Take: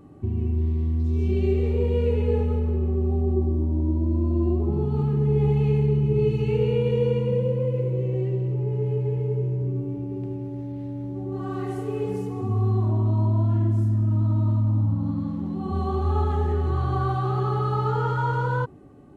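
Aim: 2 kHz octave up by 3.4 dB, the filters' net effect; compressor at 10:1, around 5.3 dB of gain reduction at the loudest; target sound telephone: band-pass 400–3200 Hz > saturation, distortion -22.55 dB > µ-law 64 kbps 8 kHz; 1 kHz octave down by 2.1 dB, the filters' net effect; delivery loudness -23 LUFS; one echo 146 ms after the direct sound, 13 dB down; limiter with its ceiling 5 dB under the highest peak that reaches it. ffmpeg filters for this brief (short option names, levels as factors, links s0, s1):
-af "equalizer=f=1000:t=o:g=-5,equalizer=f=2000:t=o:g=9,acompressor=threshold=0.0708:ratio=10,alimiter=limit=0.0841:level=0:latency=1,highpass=400,lowpass=3200,aecho=1:1:146:0.224,asoftclip=threshold=0.0447,volume=5.96" -ar 8000 -c:a pcm_mulaw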